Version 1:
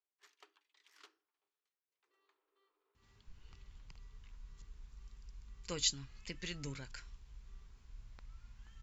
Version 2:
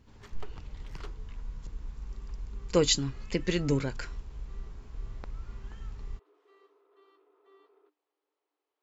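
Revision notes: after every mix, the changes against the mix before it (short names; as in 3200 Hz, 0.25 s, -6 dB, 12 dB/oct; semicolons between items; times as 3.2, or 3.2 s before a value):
speech: entry -2.95 s; master: remove passive tone stack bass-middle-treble 5-5-5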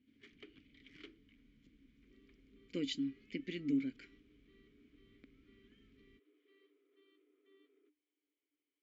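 background +9.0 dB; master: add vowel filter i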